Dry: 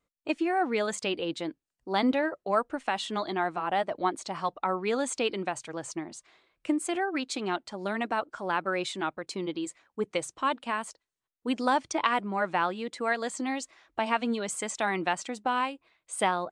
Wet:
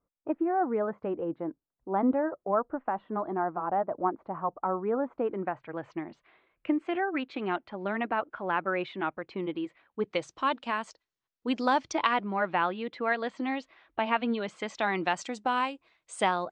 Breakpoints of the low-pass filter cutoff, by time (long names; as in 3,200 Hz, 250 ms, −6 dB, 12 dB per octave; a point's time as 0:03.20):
low-pass filter 24 dB per octave
0:05.21 1,300 Hz
0:05.92 2,800 Hz
0:09.65 2,800 Hz
0:10.36 5,900 Hz
0:11.99 5,900 Hz
0:12.41 3,600 Hz
0:14.39 3,600 Hz
0:15.28 7,500 Hz